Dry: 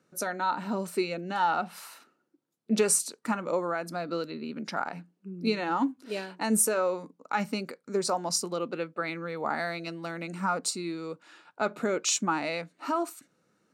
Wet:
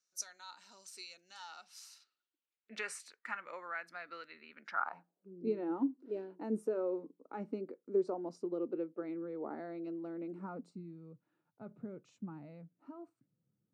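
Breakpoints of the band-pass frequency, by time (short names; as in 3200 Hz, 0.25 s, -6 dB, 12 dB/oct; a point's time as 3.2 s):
band-pass, Q 3
1.89 s 5800 Hz
2.71 s 1900 Hz
4.59 s 1900 Hz
5.5 s 350 Hz
10.44 s 350 Hz
10.86 s 120 Hz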